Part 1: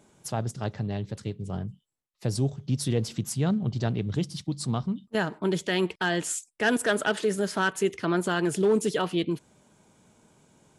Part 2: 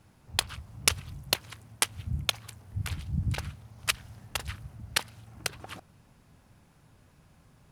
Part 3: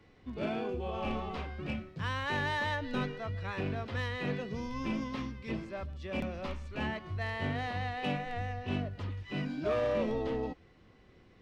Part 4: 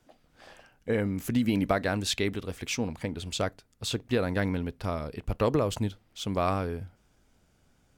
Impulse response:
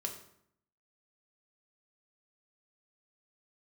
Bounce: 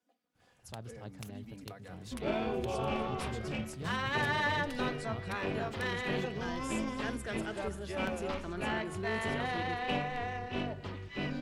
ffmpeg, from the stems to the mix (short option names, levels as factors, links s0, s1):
-filter_complex "[0:a]adelay=400,volume=0.158,asplit=2[s0][s1];[s1]volume=0.15[s2];[1:a]acompressor=threshold=0.0224:ratio=6,adelay=350,volume=0.178[s3];[2:a]acrossover=split=250[s4][s5];[s4]acompressor=threshold=0.00708:ratio=6[s6];[s6][s5]amix=inputs=2:normalize=0,tremolo=f=280:d=0.621,adelay=1850,volume=1.26,asplit=2[s7][s8];[s8]volume=0.447[s9];[3:a]highpass=200,aecho=1:1:4.1:0.73,acompressor=threshold=0.02:ratio=2,volume=0.119[s10];[4:a]atrim=start_sample=2205[s11];[s9][s11]afir=irnorm=-1:irlink=0[s12];[s2]aecho=0:1:239|478|717|956|1195|1434|1673:1|0.51|0.26|0.133|0.0677|0.0345|0.0176[s13];[s0][s3][s7][s10][s12][s13]amix=inputs=6:normalize=0"